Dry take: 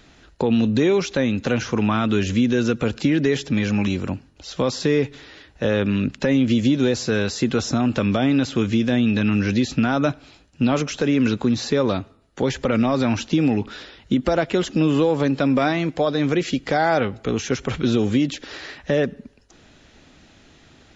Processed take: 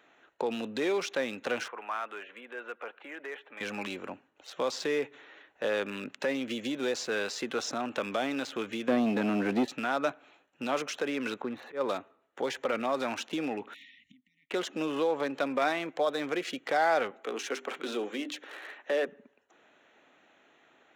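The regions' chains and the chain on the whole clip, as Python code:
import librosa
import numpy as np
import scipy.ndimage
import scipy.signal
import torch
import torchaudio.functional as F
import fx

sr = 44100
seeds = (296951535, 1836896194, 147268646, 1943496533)

y = fx.chain(x, sr, fx.highpass(hz=740.0, slope=12),
    fx.air_absorb(metres=460.0), at=(1.68, 3.61))
y = fx.chain(y, sr, fx.highpass(hz=190.0, slope=12),
    fx.tilt_eq(slope=-4.5),
    fx.leveller(passes=1), at=(8.88, 9.68))
y = fx.chain(y, sr, fx.lowpass(hz=2600.0, slope=12),
    fx.auto_swell(attack_ms=110.0), at=(11.41, 11.81))
y = fx.chain(y, sr, fx.gate_flip(shuts_db=-26.0, range_db=-26),
    fx.brickwall_bandstop(low_hz=290.0, high_hz=1800.0),
    fx.small_body(hz=(610.0, 1300.0), ring_ms=25, db=16), at=(13.74, 14.51))
y = fx.chain(y, sr, fx.highpass(hz=220.0, slope=24),
    fx.hum_notches(base_hz=50, count=8), at=(17.11, 19.08))
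y = fx.wiener(y, sr, points=9)
y = scipy.signal.sosfilt(scipy.signal.butter(2, 510.0, 'highpass', fs=sr, output='sos'), y)
y = y * 10.0 ** (-5.0 / 20.0)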